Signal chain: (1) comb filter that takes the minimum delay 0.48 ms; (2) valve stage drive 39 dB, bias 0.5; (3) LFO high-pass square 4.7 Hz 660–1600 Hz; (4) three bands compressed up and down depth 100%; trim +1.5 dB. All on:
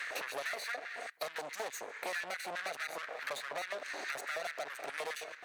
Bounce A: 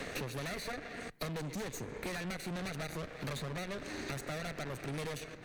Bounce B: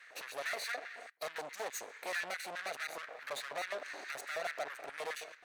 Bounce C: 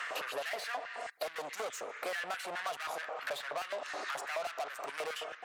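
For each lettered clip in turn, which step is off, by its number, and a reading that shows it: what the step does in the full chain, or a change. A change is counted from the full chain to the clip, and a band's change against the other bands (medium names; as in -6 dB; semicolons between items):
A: 3, 125 Hz band +27.5 dB; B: 4, momentary loudness spread change +2 LU; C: 1, 1 kHz band +3.0 dB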